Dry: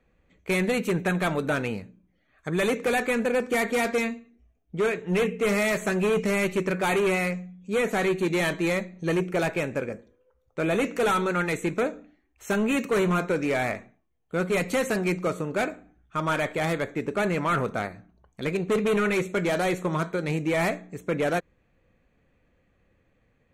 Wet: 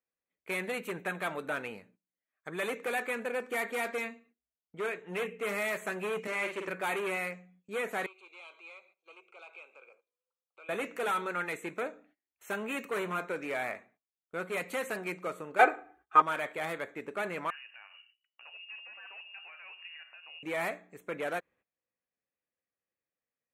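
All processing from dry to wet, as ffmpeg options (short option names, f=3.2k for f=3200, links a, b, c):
-filter_complex "[0:a]asettb=1/sr,asplit=3[a][b][c];[a]atrim=end=6.274[d];[b]atrim=start=6.27:end=6.68,asetpts=PTS-STARTPTS,afade=t=in:d=0.004:c=qsin,afade=t=out:st=0.406:d=0.004:c=qsin,aeval=exprs='val(0)+0.5*0.00841*sgn(val(0))':c=same,highpass=290,lowpass=7.8k,asplit=2[e][f];[f]adelay=49,volume=-5dB[g];[e][g]amix=inputs=2:normalize=0,atrim=end_sample=18081[h];[c]atrim=start=6.676[i];[d][h]acrossfade=d=0.004:c1=hsin:c2=qsin[j];[j][i]acrossfade=d=0.004:c1=qsin:c2=hsin,asettb=1/sr,asplit=3[k][l][m];[k]atrim=end=8.064[n];[l]atrim=start=8.06:end=10.69,asetpts=PTS-STARTPTS,afade=t=in:d=0.004:c=qsin,afade=t=out:st=2.626:d=0.004:c=qsin,acompressor=threshold=-45dB:ratio=3:attack=3.2:release=140:knee=1:detection=peak,asuperstop=centerf=1800:order=4:qfactor=2.5,highpass=f=470:w=0.5412,highpass=f=470:w=1.3066,equalizer=f=610:t=q:w=4:g=-5,equalizer=f=1.2k:t=q:w=4:g=5,equalizer=f=2.5k:t=q:w=4:g=9,equalizer=f=3.9k:t=q:w=4:g=4,equalizer=f=5.8k:t=q:w=4:g=-5,lowpass=f=7.1k:w=0.5412,lowpass=f=7.1k:w=1.3066[o];[m]atrim=start=10.686[p];[n][o]acrossfade=d=0.004:c1=hsin:c2=qsin[q];[q][p]acrossfade=d=0.004:c1=qsin:c2=hsin,asettb=1/sr,asplit=3[r][s][t];[r]atrim=end=15.594[u];[s]atrim=start=15.59:end=16.22,asetpts=PTS-STARTPTS,afade=t=in:d=0.004:c=qsin,afade=t=out:st=0.626:d=0.004:c=qsin,equalizer=f=830:w=0.39:g=13.5,aecho=1:1:2.5:0.88,atrim=end_sample=27783[v];[t]atrim=start=16.216[w];[u][v]acrossfade=d=0.004:c1=hsin:c2=qsin[x];[x][w]acrossfade=d=0.004:c1=qsin:c2=hsin,asettb=1/sr,asplit=3[y][z][aa];[y]atrim=end=17.504[ab];[z]atrim=start=17.5:end=20.43,asetpts=PTS-STARTPTS,afade=t=in:d=0.004:c=qsin,afade=t=out:st=2.926:d=0.004:c=qsin,acompressor=threshold=-38dB:ratio=6:attack=3.2:release=140:knee=1:detection=peak,acrossover=split=1200[ac][ad];[ac]aeval=exprs='val(0)*(1-0.5/2+0.5/2*cos(2*PI*1.7*n/s))':c=same[ae];[ad]aeval=exprs='val(0)*(1-0.5/2-0.5/2*cos(2*PI*1.7*n/s))':c=same[af];[ae][af]amix=inputs=2:normalize=0,lowpass=f=2.6k:t=q:w=0.5098,lowpass=f=2.6k:t=q:w=0.6013,lowpass=f=2.6k:t=q:w=0.9,lowpass=f=2.6k:t=q:w=2.563,afreqshift=-3000[ag];[aa]atrim=start=20.426[ah];[ab][ag]acrossfade=d=0.004:c1=hsin:c2=qsin[ai];[ai][ah]acrossfade=d=0.004:c1=qsin:c2=hsin,highpass=f=850:p=1,agate=range=-18dB:threshold=-58dB:ratio=16:detection=peak,equalizer=f=5.6k:t=o:w=1.2:g=-10.5,volume=-4dB"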